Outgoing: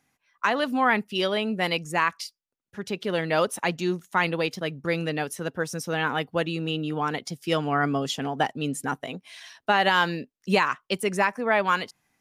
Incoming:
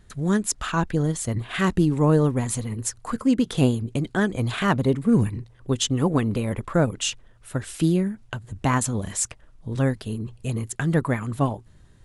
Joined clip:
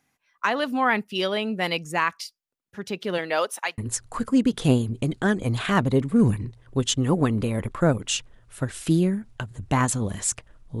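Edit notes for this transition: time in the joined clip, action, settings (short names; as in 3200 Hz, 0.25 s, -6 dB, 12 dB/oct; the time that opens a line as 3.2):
outgoing
3.17–3.78 HPF 240 Hz -> 1100 Hz
3.78 switch to incoming from 2.71 s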